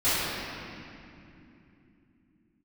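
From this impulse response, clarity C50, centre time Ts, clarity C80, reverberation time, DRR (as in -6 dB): -5.0 dB, 0.195 s, -2.5 dB, 2.7 s, -19.0 dB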